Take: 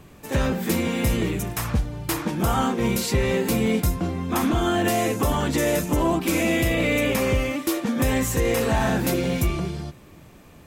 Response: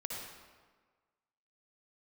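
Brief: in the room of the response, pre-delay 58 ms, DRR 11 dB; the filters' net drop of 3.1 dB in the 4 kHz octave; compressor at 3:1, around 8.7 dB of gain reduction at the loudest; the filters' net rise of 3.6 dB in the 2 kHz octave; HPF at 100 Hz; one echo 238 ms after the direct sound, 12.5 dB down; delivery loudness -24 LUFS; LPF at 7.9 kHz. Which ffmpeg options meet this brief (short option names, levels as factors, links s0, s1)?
-filter_complex "[0:a]highpass=100,lowpass=7900,equalizer=f=2000:t=o:g=6,equalizer=f=4000:t=o:g=-7,acompressor=threshold=0.0316:ratio=3,aecho=1:1:238:0.237,asplit=2[s0][s1];[1:a]atrim=start_sample=2205,adelay=58[s2];[s1][s2]afir=irnorm=-1:irlink=0,volume=0.251[s3];[s0][s3]amix=inputs=2:normalize=0,volume=2.11"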